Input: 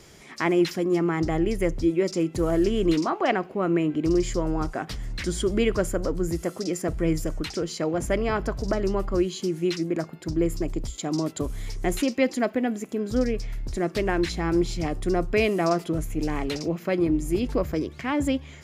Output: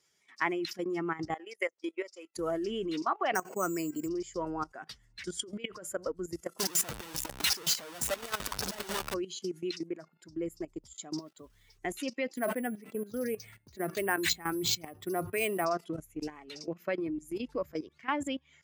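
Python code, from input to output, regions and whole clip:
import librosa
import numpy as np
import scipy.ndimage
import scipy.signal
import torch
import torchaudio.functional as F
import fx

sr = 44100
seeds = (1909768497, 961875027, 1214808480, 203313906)

y = fx.chain(x, sr, fx.highpass(hz=600.0, slope=12),
    fx.transient(attack_db=10, sustain_db=-11), at=(1.34, 2.37))
y = fx.chain(y, sr, fx.resample_bad(factor=6, down='filtered', up='hold'),
    fx.pre_swell(db_per_s=79.0), at=(3.35, 4.08))
y = fx.chain(y, sr, fx.highpass(hz=140.0, slope=6),
    fx.over_compress(threshold_db=-25.0, ratio=-0.5), at=(5.37, 6.07))
y = fx.chain(y, sr, fx.clip_1bit(),
    fx.band_squash(depth_pct=70), at=(6.59, 9.14))
y = fx.chain(y, sr, fx.lowpass(hz=5000.0, slope=12),
    fx.quant_dither(seeds[0], bits=8, dither='none'),
    fx.upward_expand(threshold_db=-36.0, expansion=1.5), at=(11.18, 11.79))
y = fx.chain(y, sr, fx.highpass(hz=57.0, slope=24),
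    fx.resample_bad(factor=4, down='filtered', up='hold'),
    fx.sustainer(db_per_s=51.0), at=(12.35, 15.65))
y = fx.bin_expand(y, sr, power=1.5)
y = fx.level_steps(y, sr, step_db=15)
y = fx.highpass(y, sr, hz=690.0, slope=6)
y = y * librosa.db_to_amplitude(4.5)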